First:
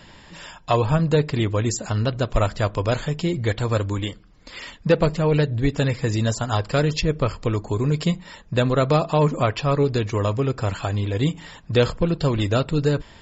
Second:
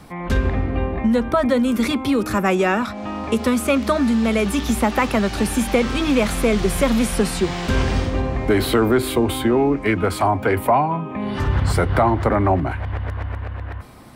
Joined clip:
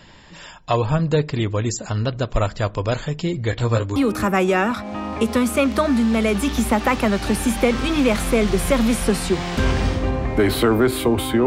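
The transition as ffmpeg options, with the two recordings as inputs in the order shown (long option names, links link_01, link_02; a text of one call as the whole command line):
ffmpeg -i cue0.wav -i cue1.wav -filter_complex "[0:a]asettb=1/sr,asplit=3[link_01][link_02][link_03];[link_01]atrim=end=3.514[link_04];[link_02]atrim=start=3.51:end=3.96,asetpts=PTS-STARTPTS,afade=type=in:duration=0.004:curve=qsin,afade=type=out:start_time=0.446:duration=0.004:curve=qsin,asplit=2[link_05][link_06];[link_06]adelay=17,volume=-4dB[link_07];[link_05][link_07]amix=inputs=2:normalize=0,atrim=end_sample=19845[link_08];[link_03]atrim=start=3.956[link_09];[link_04][link_08]acrossfade=duration=0.004:curve1=hsin:curve2=qsin[link_10];[link_10][link_09]acrossfade=duration=0.004:curve1=qsin:curve2=hsin,apad=whole_dur=11.46,atrim=end=11.46,atrim=end=3.962[link_11];[1:a]atrim=start=2.068:end=9.57[link_12];[link_11][link_12]acrossfade=duration=0.004:curve1=hsin:curve2=hsin" out.wav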